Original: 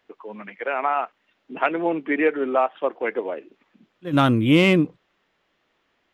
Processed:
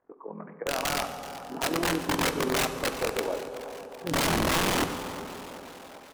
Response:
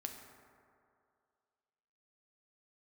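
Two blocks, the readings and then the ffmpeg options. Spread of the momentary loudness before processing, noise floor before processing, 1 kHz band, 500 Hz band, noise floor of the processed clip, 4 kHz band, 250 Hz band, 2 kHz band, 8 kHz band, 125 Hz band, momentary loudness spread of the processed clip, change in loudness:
21 LU, -70 dBFS, -5.0 dB, -7.0 dB, -49 dBFS, +1.0 dB, -9.5 dB, -4.0 dB, no reading, -9.5 dB, 17 LU, -7.0 dB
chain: -filter_complex "[0:a]lowpass=f=1300:w=0.5412,lowpass=f=1300:w=1.3066,tremolo=f=42:d=0.788,aeval=exprs='(mod(11.2*val(0)+1,2)-1)/11.2':c=same,asplit=7[s0][s1][s2][s3][s4][s5][s6];[s1]adelay=379,afreqshift=110,volume=0.168[s7];[s2]adelay=758,afreqshift=220,volume=0.104[s8];[s3]adelay=1137,afreqshift=330,volume=0.0646[s9];[s4]adelay=1516,afreqshift=440,volume=0.0398[s10];[s5]adelay=1895,afreqshift=550,volume=0.0248[s11];[s6]adelay=2274,afreqshift=660,volume=0.0153[s12];[s0][s7][s8][s9][s10][s11][s12]amix=inputs=7:normalize=0,asplit=2[s13][s14];[1:a]atrim=start_sample=2205,asetrate=28224,aresample=44100[s15];[s14][s15]afir=irnorm=-1:irlink=0,volume=1.58[s16];[s13][s16]amix=inputs=2:normalize=0,volume=0.473"

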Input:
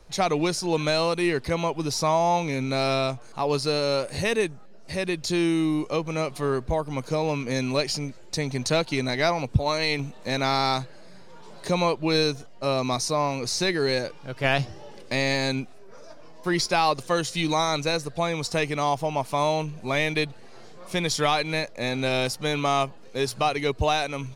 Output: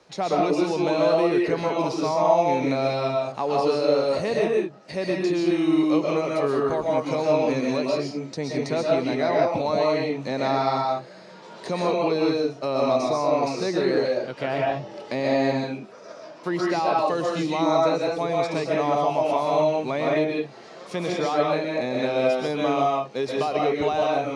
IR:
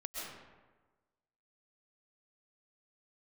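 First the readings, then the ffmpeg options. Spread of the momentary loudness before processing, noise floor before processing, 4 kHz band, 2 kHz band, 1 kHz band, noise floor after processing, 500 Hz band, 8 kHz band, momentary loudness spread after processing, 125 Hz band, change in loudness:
7 LU, -43 dBFS, -6.5 dB, -4.0 dB, +2.0 dB, -44 dBFS, +4.5 dB, -9.5 dB, 8 LU, -4.0 dB, +2.0 dB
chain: -filter_complex "[0:a]acrossover=split=1100[s0][s1];[s0]alimiter=limit=0.1:level=0:latency=1[s2];[s1]acompressor=threshold=0.01:ratio=6[s3];[s2][s3]amix=inputs=2:normalize=0,highpass=200,lowpass=6100[s4];[1:a]atrim=start_sample=2205,afade=t=out:st=0.27:d=0.01,atrim=end_sample=12348[s5];[s4][s5]afir=irnorm=-1:irlink=0,volume=2.24"

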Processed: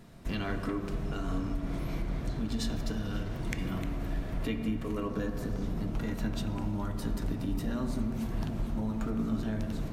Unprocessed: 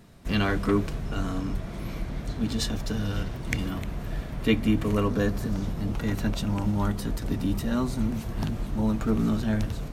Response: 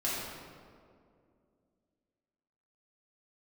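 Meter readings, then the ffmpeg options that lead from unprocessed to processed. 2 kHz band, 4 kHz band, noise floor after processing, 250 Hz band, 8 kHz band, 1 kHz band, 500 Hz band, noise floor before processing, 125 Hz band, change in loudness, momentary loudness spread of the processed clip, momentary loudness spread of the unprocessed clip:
-8.0 dB, -8.0 dB, -38 dBFS, -6.0 dB, -7.5 dB, -6.5 dB, -7.5 dB, -36 dBFS, -6.5 dB, -6.0 dB, 3 LU, 9 LU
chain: -filter_complex "[0:a]acompressor=threshold=0.0316:ratio=6,asplit=2[s0][s1];[1:a]atrim=start_sample=2205,highshelf=f=3900:g=-12[s2];[s1][s2]afir=irnorm=-1:irlink=0,volume=0.376[s3];[s0][s3]amix=inputs=2:normalize=0,volume=0.708"

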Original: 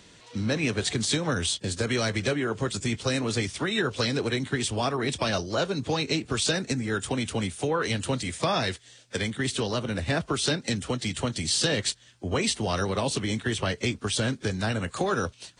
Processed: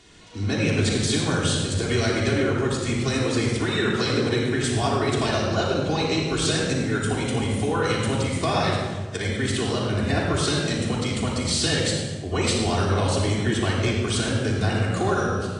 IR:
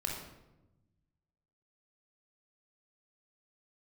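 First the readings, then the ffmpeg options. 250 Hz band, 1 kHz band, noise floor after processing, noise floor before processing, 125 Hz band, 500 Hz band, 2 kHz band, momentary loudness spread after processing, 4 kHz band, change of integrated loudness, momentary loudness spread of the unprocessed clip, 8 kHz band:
+5.0 dB, +4.5 dB, -30 dBFS, -55 dBFS, +6.5 dB, +4.5 dB, +3.0 dB, 3 LU, +2.0 dB, +4.0 dB, 4 LU, +2.0 dB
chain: -filter_complex "[1:a]atrim=start_sample=2205,asetrate=25137,aresample=44100[s0];[0:a][s0]afir=irnorm=-1:irlink=0,volume=0.708"

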